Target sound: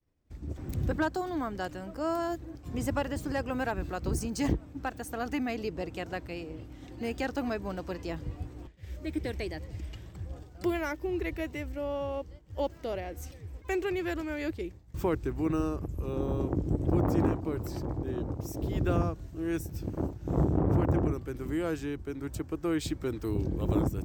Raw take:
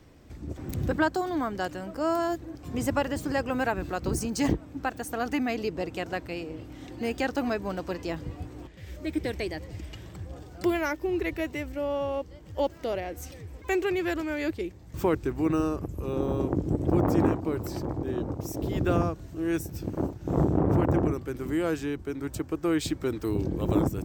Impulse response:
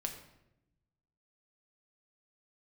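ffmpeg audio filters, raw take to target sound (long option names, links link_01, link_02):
-filter_complex "[0:a]agate=range=-33dB:threshold=-40dB:ratio=3:detection=peak,lowshelf=frequency=75:gain=10.5,acrossover=split=910[link_01][link_02];[link_02]asoftclip=type=hard:threshold=-24.5dB[link_03];[link_01][link_03]amix=inputs=2:normalize=0,volume=-4.5dB"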